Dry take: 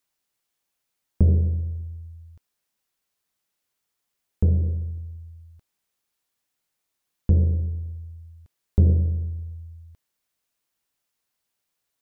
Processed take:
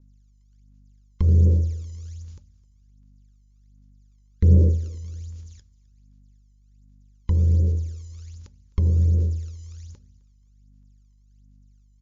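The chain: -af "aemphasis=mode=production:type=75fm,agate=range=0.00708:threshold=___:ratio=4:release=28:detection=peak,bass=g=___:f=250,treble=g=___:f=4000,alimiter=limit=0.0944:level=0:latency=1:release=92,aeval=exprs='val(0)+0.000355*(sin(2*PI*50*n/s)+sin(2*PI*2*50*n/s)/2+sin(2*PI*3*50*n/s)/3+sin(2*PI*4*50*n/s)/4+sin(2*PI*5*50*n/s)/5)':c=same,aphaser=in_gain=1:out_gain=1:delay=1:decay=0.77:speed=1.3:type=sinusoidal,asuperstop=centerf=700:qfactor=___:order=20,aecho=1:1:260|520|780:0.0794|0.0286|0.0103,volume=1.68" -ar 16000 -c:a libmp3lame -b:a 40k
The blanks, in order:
0.00178, -9, 15, 3.1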